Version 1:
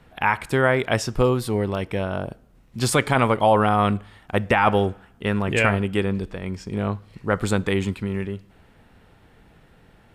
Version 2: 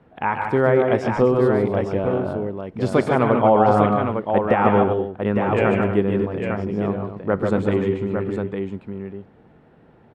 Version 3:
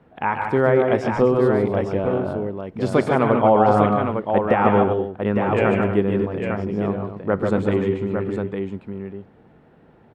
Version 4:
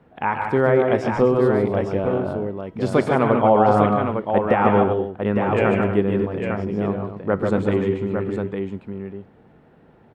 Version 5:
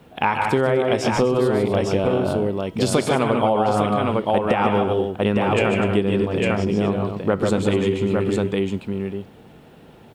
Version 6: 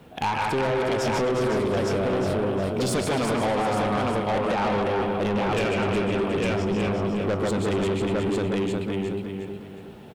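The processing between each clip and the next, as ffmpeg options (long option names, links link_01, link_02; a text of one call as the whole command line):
ffmpeg -i in.wav -filter_complex "[0:a]bandpass=frequency=360:width_type=q:width=0.56:csg=0,asplit=2[link_01][link_02];[link_02]aecho=0:1:131|144|152|248|855:0.335|0.398|0.422|0.266|0.501[link_03];[link_01][link_03]amix=inputs=2:normalize=0,volume=3dB" out.wav
ffmpeg -i in.wav -af "bandreject=frequency=60:width_type=h:width=6,bandreject=frequency=120:width_type=h:width=6" out.wav
ffmpeg -i in.wav -af "bandreject=frequency=323.9:width_type=h:width=4,bandreject=frequency=647.8:width_type=h:width=4,bandreject=frequency=971.7:width_type=h:width=4,bandreject=frequency=1295.6:width_type=h:width=4,bandreject=frequency=1619.5:width_type=h:width=4,bandreject=frequency=1943.4:width_type=h:width=4,bandreject=frequency=2267.3:width_type=h:width=4,bandreject=frequency=2591.2:width_type=h:width=4,bandreject=frequency=2915.1:width_type=h:width=4,bandreject=frequency=3239:width_type=h:width=4,bandreject=frequency=3562.9:width_type=h:width=4,bandreject=frequency=3886.8:width_type=h:width=4,bandreject=frequency=4210.7:width_type=h:width=4,bandreject=frequency=4534.6:width_type=h:width=4,bandreject=frequency=4858.5:width_type=h:width=4,bandreject=frequency=5182.4:width_type=h:width=4,bandreject=frequency=5506.3:width_type=h:width=4,bandreject=frequency=5830.2:width_type=h:width=4,bandreject=frequency=6154.1:width_type=h:width=4,bandreject=frequency=6478:width_type=h:width=4,bandreject=frequency=6801.9:width_type=h:width=4,bandreject=frequency=7125.8:width_type=h:width=4,bandreject=frequency=7449.7:width_type=h:width=4,bandreject=frequency=7773.6:width_type=h:width=4,bandreject=frequency=8097.5:width_type=h:width=4,bandreject=frequency=8421.4:width_type=h:width=4,bandreject=frequency=8745.3:width_type=h:width=4,bandreject=frequency=9069.2:width_type=h:width=4,bandreject=frequency=9393.1:width_type=h:width=4,bandreject=frequency=9717:width_type=h:width=4,bandreject=frequency=10040.9:width_type=h:width=4,bandreject=frequency=10364.8:width_type=h:width=4,bandreject=frequency=10688.7:width_type=h:width=4,bandreject=frequency=11012.6:width_type=h:width=4,bandreject=frequency=11336.5:width_type=h:width=4" out.wav
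ffmpeg -i in.wav -af "acompressor=threshold=-21dB:ratio=6,aexciter=amount=3.4:drive=6.2:freq=2600,volume=5.5dB" out.wav
ffmpeg -i in.wav -filter_complex "[0:a]asplit=2[link_01][link_02];[link_02]aecho=0:1:362|724|1086|1448:0.501|0.17|0.0579|0.0197[link_03];[link_01][link_03]amix=inputs=2:normalize=0,asoftclip=type=tanh:threshold=-20.5dB" out.wav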